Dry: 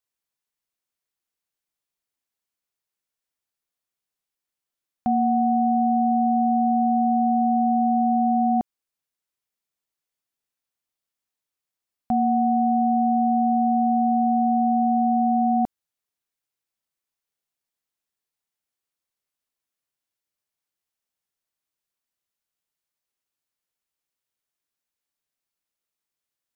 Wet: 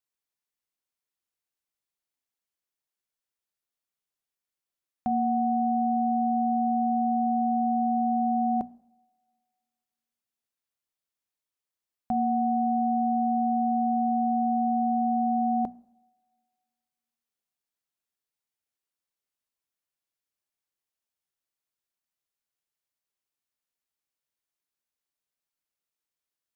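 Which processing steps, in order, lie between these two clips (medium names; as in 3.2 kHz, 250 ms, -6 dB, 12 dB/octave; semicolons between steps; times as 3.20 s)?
hum notches 60/120/180/240 Hz; two-slope reverb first 0.75 s, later 2.2 s, from -20 dB, DRR 20 dB; trim -4 dB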